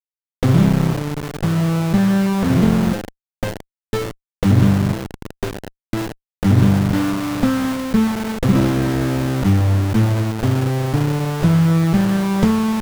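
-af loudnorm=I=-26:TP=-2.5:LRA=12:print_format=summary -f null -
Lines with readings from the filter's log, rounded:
Input Integrated:    -17.6 LUFS
Input True Peak:      -1.6 dBTP
Input LRA:             2.3 LU
Input Threshold:     -28.0 LUFS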